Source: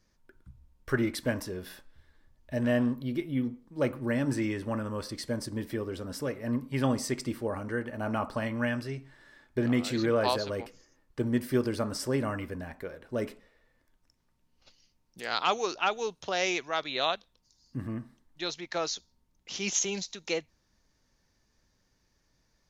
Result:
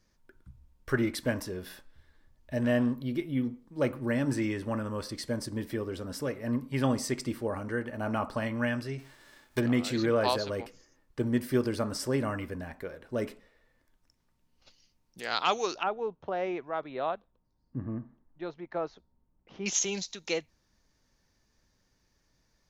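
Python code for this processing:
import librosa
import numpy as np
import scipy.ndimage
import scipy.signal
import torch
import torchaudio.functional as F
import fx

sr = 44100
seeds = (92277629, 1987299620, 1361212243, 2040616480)

y = fx.envelope_flatten(x, sr, power=0.6, at=(8.98, 9.59), fade=0.02)
y = fx.lowpass(y, sr, hz=1100.0, slope=12, at=(15.83, 19.66))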